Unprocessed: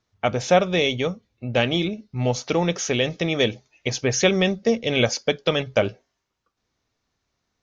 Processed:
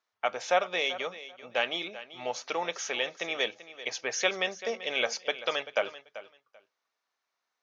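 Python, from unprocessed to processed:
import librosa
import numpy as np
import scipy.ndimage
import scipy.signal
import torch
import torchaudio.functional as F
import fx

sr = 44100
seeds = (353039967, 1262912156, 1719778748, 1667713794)

p1 = scipy.signal.sosfilt(scipy.signal.butter(2, 900.0, 'highpass', fs=sr, output='sos'), x)
p2 = fx.high_shelf(p1, sr, hz=2400.0, db=-10.0)
y = p2 + fx.echo_feedback(p2, sr, ms=388, feedback_pct=18, wet_db=-15.0, dry=0)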